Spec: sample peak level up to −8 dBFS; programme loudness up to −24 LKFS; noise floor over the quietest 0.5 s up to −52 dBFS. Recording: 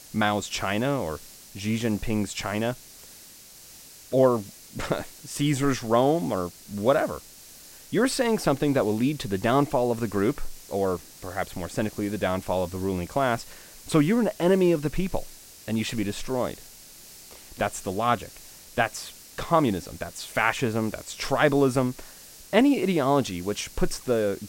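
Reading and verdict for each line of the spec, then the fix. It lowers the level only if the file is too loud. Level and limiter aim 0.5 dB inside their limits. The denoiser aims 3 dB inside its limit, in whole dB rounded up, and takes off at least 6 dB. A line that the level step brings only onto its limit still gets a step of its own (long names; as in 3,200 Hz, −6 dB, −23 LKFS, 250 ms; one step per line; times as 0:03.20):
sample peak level −5.0 dBFS: out of spec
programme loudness −26.0 LKFS: in spec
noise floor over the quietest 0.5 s −48 dBFS: out of spec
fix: broadband denoise 7 dB, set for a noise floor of −48 dBFS
brickwall limiter −8.5 dBFS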